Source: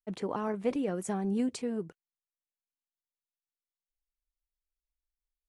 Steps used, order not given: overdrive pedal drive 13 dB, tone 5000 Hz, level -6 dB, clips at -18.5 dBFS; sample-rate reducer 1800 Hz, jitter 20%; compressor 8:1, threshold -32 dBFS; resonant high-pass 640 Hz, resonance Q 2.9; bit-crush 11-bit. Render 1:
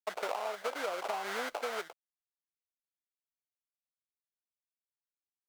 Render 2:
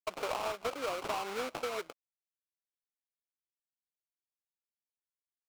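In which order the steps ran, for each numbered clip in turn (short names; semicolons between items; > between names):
sample-rate reducer > overdrive pedal > resonant high-pass > compressor > bit-crush; bit-crush > resonant high-pass > sample-rate reducer > overdrive pedal > compressor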